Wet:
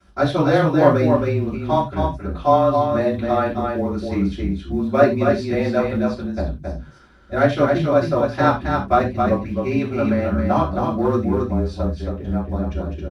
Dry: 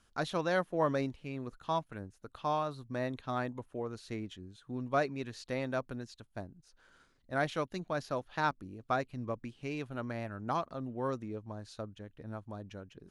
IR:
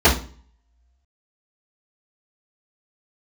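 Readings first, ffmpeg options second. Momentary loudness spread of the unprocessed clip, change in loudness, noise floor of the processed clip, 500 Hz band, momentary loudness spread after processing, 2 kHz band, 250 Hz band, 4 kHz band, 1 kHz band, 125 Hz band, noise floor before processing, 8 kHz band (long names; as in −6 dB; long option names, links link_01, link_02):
14 LU, +17.0 dB, −39 dBFS, +18.0 dB, 9 LU, +12.0 dB, +19.5 dB, +11.0 dB, +15.5 dB, +19.0 dB, −69 dBFS, can't be measured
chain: -filter_complex "[0:a]asplit=2[link_01][link_02];[link_02]volume=31dB,asoftclip=hard,volume=-31dB,volume=-9dB[link_03];[link_01][link_03]amix=inputs=2:normalize=0,afreqshift=-25,aecho=1:1:270:0.596,acrusher=bits=8:mode=log:mix=0:aa=0.000001[link_04];[1:a]atrim=start_sample=2205,atrim=end_sample=3969,asetrate=37044,aresample=44100[link_05];[link_04][link_05]afir=irnorm=-1:irlink=0,volume=-13dB"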